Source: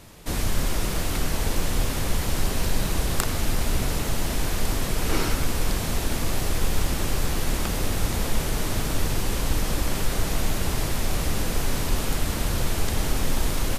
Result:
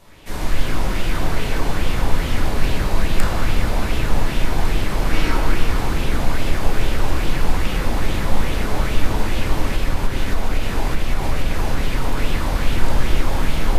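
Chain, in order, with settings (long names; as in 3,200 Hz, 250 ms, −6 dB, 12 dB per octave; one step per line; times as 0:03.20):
convolution reverb RT60 3.0 s, pre-delay 5 ms, DRR −9 dB
0:09.68–0:12.19: downward compressor, threshold −4 dBFS, peak gain reduction 5 dB
auto-filter bell 2.4 Hz 790–3,100 Hz +7 dB
level −6.5 dB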